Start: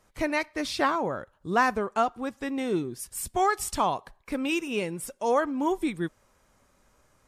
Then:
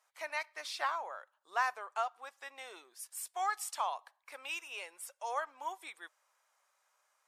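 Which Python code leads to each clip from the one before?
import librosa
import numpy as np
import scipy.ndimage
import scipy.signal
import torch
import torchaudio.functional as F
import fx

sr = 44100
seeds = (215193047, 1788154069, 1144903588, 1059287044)

y = scipy.signal.sosfilt(scipy.signal.butter(4, 710.0, 'highpass', fs=sr, output='sos'), x)
y = y * 10.0 ** (-8.0 / 20.0)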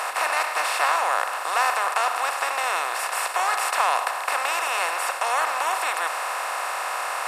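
y = fx.bin_compress(x, sr, power=0.2)
y = y * 10.0 ** (4.5 / 20.0)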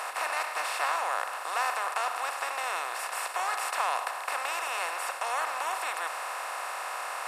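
y = x + 10.0 ** (-53.0 / 20.0) * np.sin(2.0 * np.pi * 11000.0 * np.arange(len(x)) / sr)
y = y * 10.0 ** (-7.5 / 20.0)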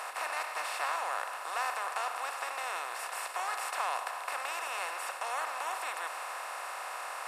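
y = x + 10.0 ** (-14.0 / 20.0) * np.pad(x, (int(332 * sr / 1000.0), 0))[:len(x)]
y = y * 10.0 ** (-4.5 / 20.0)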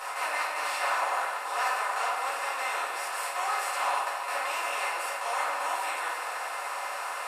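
y = fx.room_shoebox(x, sr, seeds[0], volume_m3=120.0, walls='mixed', distance_m=2.0)
y = y * 10.0 ** (-2.5 / 20.0)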